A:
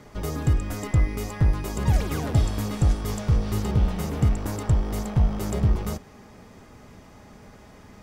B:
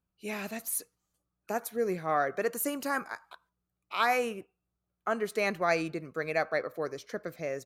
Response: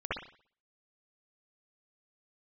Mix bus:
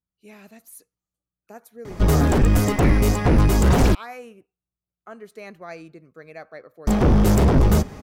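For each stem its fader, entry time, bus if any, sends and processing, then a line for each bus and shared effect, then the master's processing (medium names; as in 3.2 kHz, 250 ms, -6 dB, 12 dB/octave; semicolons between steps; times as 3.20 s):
-6.0 dB, 1.85 s, muted 3.95–6.87 s, no send, sine folder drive 15 dB, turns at -9 dBFS
-5.5 dB, 0.00 s, no send, none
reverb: none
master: bass shelf 430 Hz +5.5 dB; upward expansion 1.5:1, over -24 dBFS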